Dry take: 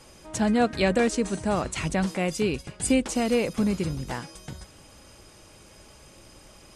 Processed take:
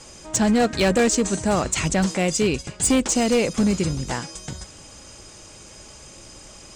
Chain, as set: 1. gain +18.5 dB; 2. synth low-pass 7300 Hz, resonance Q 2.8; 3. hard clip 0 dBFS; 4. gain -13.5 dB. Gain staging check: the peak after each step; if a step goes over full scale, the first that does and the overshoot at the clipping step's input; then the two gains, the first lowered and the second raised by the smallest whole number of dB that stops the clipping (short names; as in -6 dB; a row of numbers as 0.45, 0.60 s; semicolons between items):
+7.5, +8.5, 0.0, -13.5 dBFS; step 1, 8.5 dB; step 1 +9.5 dB, step 4 -4.5 dB